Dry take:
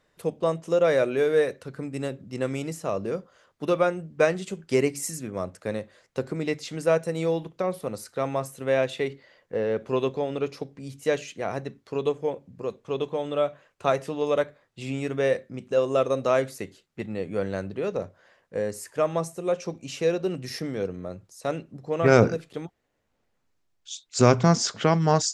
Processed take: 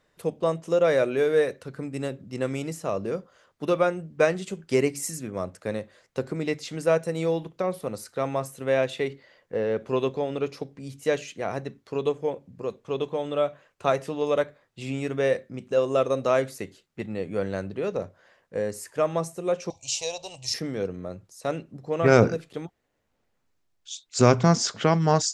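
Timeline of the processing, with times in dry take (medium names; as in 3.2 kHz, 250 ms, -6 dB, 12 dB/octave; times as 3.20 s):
19.70–20.54 s: FFT filter 110 Hz 0 dB, 190 Hz -25 dB, 370 Hz -21 dB, 640 Hz 0 dB, 940 Hz +6 dB, 1.4 kHz -22 dB, 2.6 kHz +1 dB, 3.9 kHz +8 dB, 7.3 kHz +14 dB, 12 kHz -3 dB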